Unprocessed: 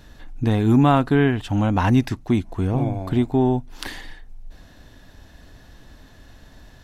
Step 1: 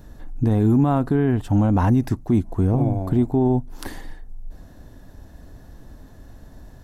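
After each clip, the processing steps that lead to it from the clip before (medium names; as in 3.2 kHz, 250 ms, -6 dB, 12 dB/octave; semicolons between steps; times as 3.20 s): peaking EQ 3 kHz -14 dB 2.3 oct; peak limiter -14 dBFS, peak gain reduction 7.5 dB; trim +4 dB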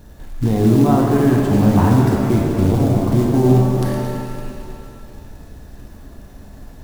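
backward echo that repeats 111 ms, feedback 72%, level -11 dB; companded quantiser 6-bit; pitch-shifted reverb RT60 2.3 s, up +7 st, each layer -8 dB, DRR 0.5 dB; trim +1 dB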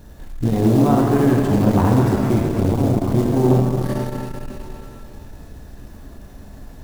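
transformer saturation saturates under 330 Hz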